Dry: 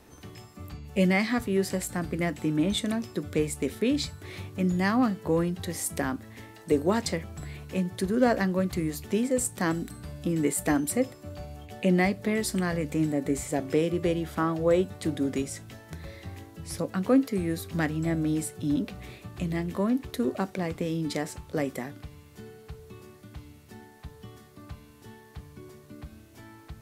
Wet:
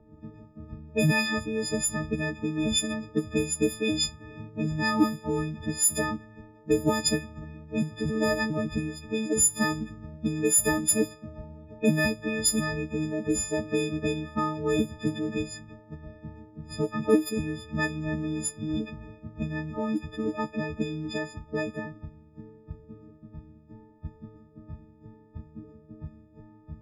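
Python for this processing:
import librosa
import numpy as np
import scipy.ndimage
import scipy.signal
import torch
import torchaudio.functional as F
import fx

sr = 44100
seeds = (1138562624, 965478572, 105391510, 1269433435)

y = fx.freq_snap(x, sr, grid_st=6)
y = fx.hpss(y, sr, part='harmonic', gain_db=-13)
y = fx.env_lowpass(y, sr, base_hz=520.0, full_db=-29.0)
y = y * librosa.db_to_amplitude(8.5)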